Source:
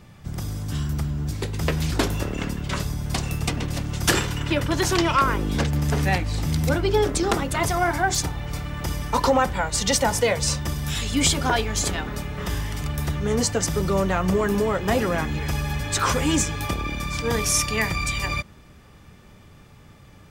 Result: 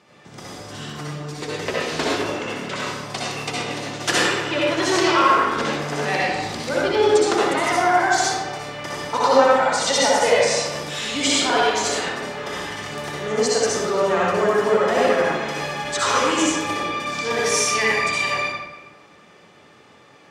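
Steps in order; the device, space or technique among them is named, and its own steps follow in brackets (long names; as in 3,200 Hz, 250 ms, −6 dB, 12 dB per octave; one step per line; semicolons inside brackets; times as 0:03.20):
supermarket ceiling speaker (band-pass filter 350–6,900 Hz; convolution reverb RT60 1.2 s, pre-delay 56 ms, DRR −5.5 dB)
0:00.99–0:01.65: comb filter 6.6 ms, depth 64%
level −1 dB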